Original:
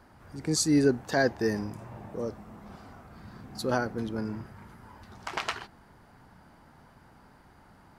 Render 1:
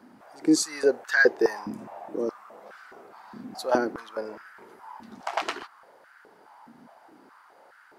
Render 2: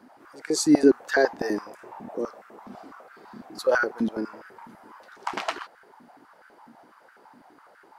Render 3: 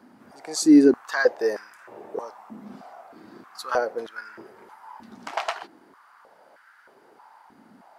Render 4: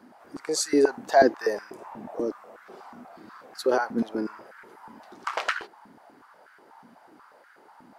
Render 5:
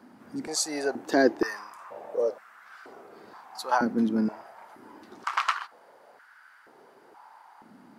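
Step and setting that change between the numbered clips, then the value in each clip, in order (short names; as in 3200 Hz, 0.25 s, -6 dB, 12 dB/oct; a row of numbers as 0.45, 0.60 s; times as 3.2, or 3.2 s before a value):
stepped high-pass, rate: 4.8, 12, 3.2, 8.2, 2.1 Hz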